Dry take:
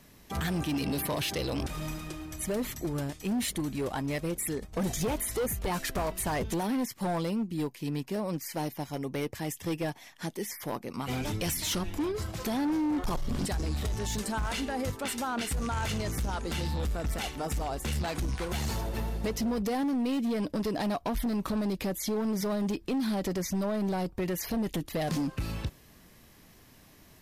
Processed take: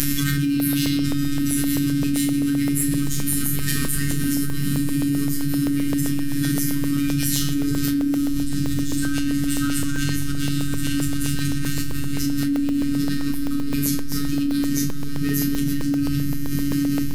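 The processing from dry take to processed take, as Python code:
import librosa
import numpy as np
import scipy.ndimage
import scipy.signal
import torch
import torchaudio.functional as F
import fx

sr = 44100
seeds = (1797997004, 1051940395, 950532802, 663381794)

y = scipy.signal.sosfilt(scipy.signal.ellip(3, 1.0, 60, [330.0, 1400.0], 'bandstop', fs=sr, output='sos'), x)
y = fx.low_shelf(y, sr, hz=320.0, db=9.0)
y = fx.echo_diffused(y, sr, ms=1558, feedback_pct=60, wet_db=-9.0)
y = fx.room_shoebox(y, sr, seeds[0], volume_m3=2900.0, walls='mixed', distance_m=2.7)
y = fx.robotise(y, sr, hz=142.0)
y = fx.stretch_vocoder_free(y, sr, factor=0.63)
y = fx.high_shelf(y, sr, hz=5800.0, db=11.0)
y = fx.doubler(y, sr, ms=32.0, db=-6.5)
y = fx.buffer_crackle(y, sr, first_s=0.6, period_s=0.13, block=64, kind='zero')
y = fx.env_flatten(y, sr, amount_pct=100)
y = y * librosa.db_to_amplitude(-6.5)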